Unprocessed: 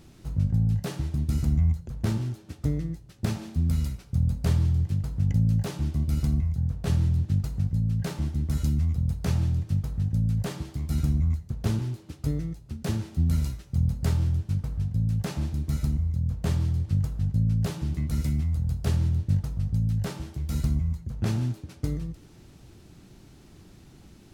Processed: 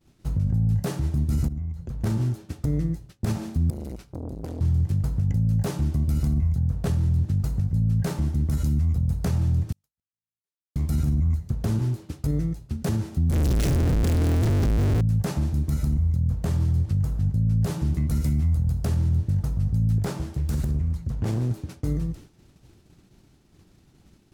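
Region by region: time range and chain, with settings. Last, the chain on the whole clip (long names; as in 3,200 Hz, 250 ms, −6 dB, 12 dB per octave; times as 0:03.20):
0:01.48–0:02.01: downward compressor 10 to 1, threshold −33 dBFS + one half of a high-frequency compander decoder only
0:03.70–0:04.61: downward compressor 12 to 1, threshold −30 dBFS + saturating transformer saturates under 470 Hz
0:09.72–0:10.76: spectral tilt +4.5 dB per octave + gate with flip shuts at −33 dBFS, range −41 dB
0:13.31–0:15.01: sign of each sample alone + low-pass filter 3,400 Hz 6 dB per octave + parametric band 980 Hz −8.5 dB 1.6 octaves
0:19.98–0:21.51: downward compressor, threshold −26 dBFS + highs frequency-modulated by the lows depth 0.65 ms
whole clip: downward expander −41 dBFS; dynamic equaliser 3,200 Hz, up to −6 dB, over −57 dBFS, Q 0.72; brickwall limiter −22 dBFS; level +6 dB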